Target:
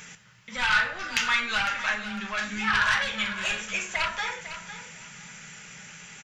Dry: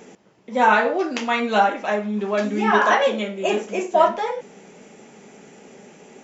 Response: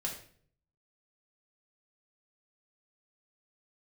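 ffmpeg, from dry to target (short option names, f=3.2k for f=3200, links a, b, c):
-filter_complex "[0:a]asplit=2[a][b];[b]aeval=exprs='0.75*sin(PI/2*3.55*val(0)/0.75)':c=same,volume=-5.5dB[c];[a][c]amix=inputs=2:normalize=0,bandreject=f=720:w=12,acompressor=threshold=-13dB:ratio=6,firequalizer=gain_entry='entry(130,0);entry(280,-28);entry(1400,1)':delay=0.05:min_phase=1,aecho=1:1:503|1006|1509:0.251|0.0578|0.0133,asplit=2[d][e];[1:a]atrim=start_sample=2205[f];[e][f]afir=irnorm=-1:irlink=0,volume=-6dB[g];[d][g]amix=inputs=2:normalize=0,volume=-8dB"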